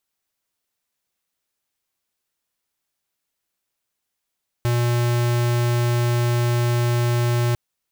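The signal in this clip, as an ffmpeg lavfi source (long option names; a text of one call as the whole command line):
ffmpeg -f lavfi -i "aevalsrc='0.106*(2*lt(mod(120*t,1),0.5)-1)':duration=2.9:sample_rate=44100" out.wav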